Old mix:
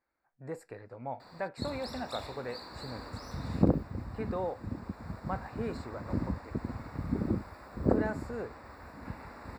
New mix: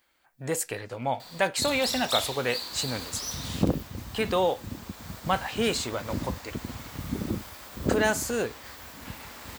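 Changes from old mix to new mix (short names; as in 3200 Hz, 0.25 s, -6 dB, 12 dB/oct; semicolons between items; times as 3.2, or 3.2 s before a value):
speech +9.5 dB; master: remove running mean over 14 samples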